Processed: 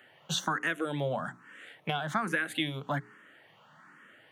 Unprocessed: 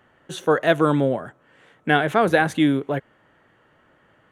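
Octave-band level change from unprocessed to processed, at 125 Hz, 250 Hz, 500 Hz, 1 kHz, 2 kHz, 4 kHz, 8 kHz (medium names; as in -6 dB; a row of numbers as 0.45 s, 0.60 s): -10.0 dB, -15.0 dB, -16.0 dB, -11.0 dB, -8.5 dB, -3.0 dB, +0.5 dB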